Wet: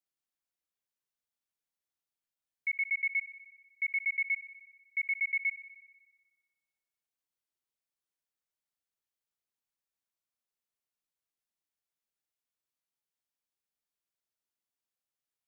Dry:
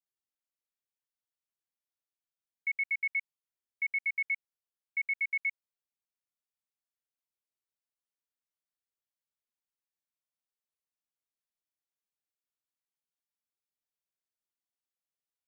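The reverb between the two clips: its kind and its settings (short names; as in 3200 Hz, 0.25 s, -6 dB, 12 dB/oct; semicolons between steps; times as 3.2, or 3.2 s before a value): spring tank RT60 1.4 s, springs 55 ms, chirp 55 ms, DRR 14.5 dB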